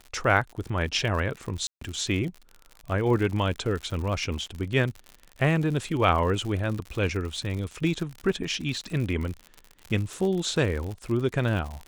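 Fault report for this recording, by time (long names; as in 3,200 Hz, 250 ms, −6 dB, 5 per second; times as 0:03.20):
surface crackle 75 per second −32 dBFS
0:01.67–0:01.81: drop-out 144 ms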